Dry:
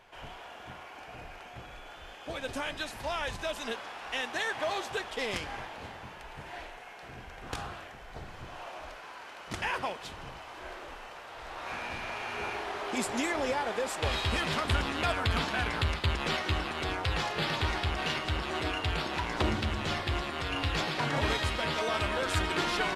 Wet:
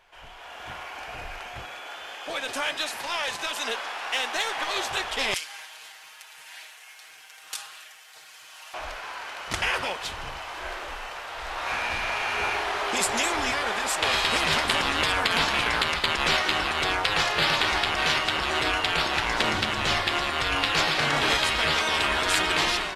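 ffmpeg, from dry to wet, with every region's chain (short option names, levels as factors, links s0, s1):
-filter_complex "[0:a]asettb=1/sr,asplit=3[s0][s1][s2];[s0]atrim=end=1.654[s3];[s1]atrim=start=1.65:end=4.76,asetpts=PTS-STARTPTS,afade=t=in:d=0.004:c=qsin,afade=t=out:st=3.106:d=0.004:c=qsin,highpass=230,aeval=exprs='(tanh(22.4*val(0)+0.1)-tanh(0.1))/22.4':c=same[s4];[s2]atrim=start=4.756[s5];[s3][s4]acrossfade=d=0.004:c1=hsin:c2=qsin[s6];[s6][s5]acrossfade=d=0.004:c1=qsin:c2=hsin,asettb=1/sr,asplit=3[s7][s8][s9];[s7]atrim=end=5.344[s10];[s8]atrim=start=5.34:end=8.74,asetpts=PTS-STARTPTS,afade=t=in:d=0.004:c=qsin,afade=t=out:st=3.396:d=0.004:c=qsin,highpass=87,aderivative,aecho=1:1:6.4:0.75,atrim=end_sample=149940[s11];[s9]atrim=start=8.736[s12];[s10][s11]acrossfade=d=0.004:c1=hsin:c2=qsin[s13];[s13][s12]acrossfade=d=0.004:c1=qsin:c2=hsin,equalizer=f=200:w=0.42:g=-10,afftfilt=real='re*lt(hypot(re,im),0.0891)':imag='im*lt(hypot(re,im),0.0891)':win_size=1024:overlap=0.75,dynaudnorm=f=360:g=3:m=3.55"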